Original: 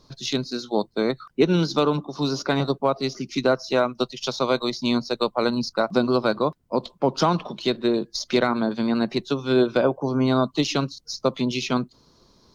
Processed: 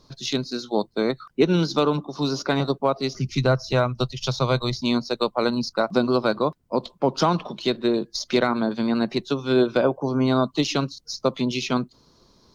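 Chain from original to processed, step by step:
0:03.14–0:04.81: low shelf with overshoot 170 Hz +14 dB, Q 1.5

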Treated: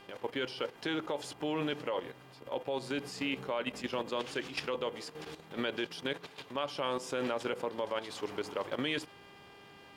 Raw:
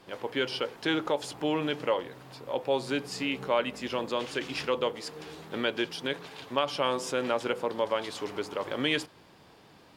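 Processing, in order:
hum with harmonics 400 Hz, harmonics 8, −56 dBFS −1 dB per octave
output level in coarse steps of 11 dB

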